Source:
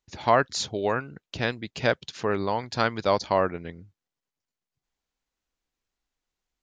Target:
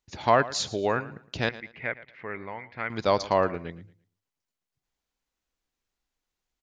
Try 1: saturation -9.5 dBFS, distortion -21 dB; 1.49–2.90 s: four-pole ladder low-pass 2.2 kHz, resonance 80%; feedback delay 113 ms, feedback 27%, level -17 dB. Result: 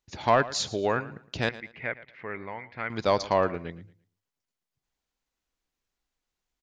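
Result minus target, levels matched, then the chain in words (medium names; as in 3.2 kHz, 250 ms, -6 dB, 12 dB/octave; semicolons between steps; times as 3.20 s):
saturation: distortion +11 dB
saturation -3 dBFS, distortion -32 dB; 1.49–2.90 s: four-pole ladder low-pass 2.2 kHz, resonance 80%; feedback delay 113 ms, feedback 27%, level -17 dB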